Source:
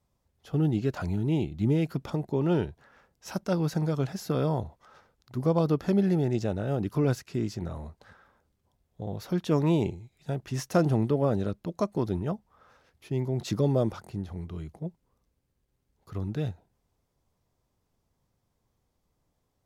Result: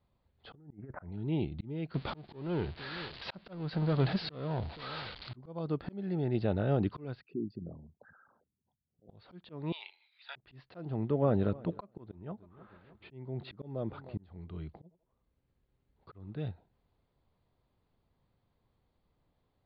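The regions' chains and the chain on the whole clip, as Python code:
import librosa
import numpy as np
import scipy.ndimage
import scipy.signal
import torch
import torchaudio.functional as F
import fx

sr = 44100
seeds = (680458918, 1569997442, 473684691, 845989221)

y = fx.chain(x, sr, fx.steep_lowpass(hz=2100.0, slope=72),
    fx.over_compress(threshold_db=-30.0, ratio=-0.5), at=(0.55, 1.12))
y = fx.chain(y, sr, fx.crossing_spikes(level_db=-29.0),
    fx.power_curve(exponent=0.7),
    fx.echo_single(ms=468, db=-22.5), at=(1.94, 5.36))
y = fx.chain(y, sr, fx.envelope_sharpen(power=3.0),
    fx.highpass(hz=210.0, slope=12),
    fx.spacing_loss(db_at_10k=29), at=(7.21, 9.09))
y = fx.chain(y, sr, fx.highpass(hz=1100.0, slope=24),
    fx.high_shelf(hz=2200.0, db=9.5), at=(9.72, 10.36))
y = fx.chain(y, sr, fx.lowpass(hz=3100.0, slope=12),
    fx.echo_feedback(ms=306, feedback_pct=44, wet_db=-23.5), at=(10.94, 14.23))
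y = fx.chain(y, sr, fx.high_shelf(hz=5400.0, db=-9.5),
    fx.echo_thinned(ms=84, feedback_pct=54, hz=840.0, wet_db=-13.0), at=(14.82, 16.4))
y = scipy.signal.sosfilt(scipy.signal.butter(16, 4600.0, 'lowpass', fs=sr, output='sos'), y)
y = fx.auto_swell(y, sr, attack_ms=673.0)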